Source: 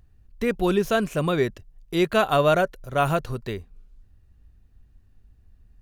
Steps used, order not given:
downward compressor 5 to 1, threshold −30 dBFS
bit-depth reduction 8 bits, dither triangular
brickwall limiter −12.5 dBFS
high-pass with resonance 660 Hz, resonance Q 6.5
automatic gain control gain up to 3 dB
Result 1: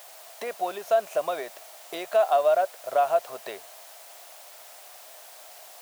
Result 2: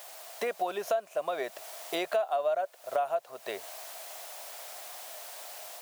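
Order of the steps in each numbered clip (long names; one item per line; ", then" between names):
automatic gain control, then downward compressor, then bit-depth reduction, then high-pass with resonance, then brickwall limiter
bit-depth reduction, then automatic gain control, then high-pass with resonance, then downward compressor, then brickwall limiter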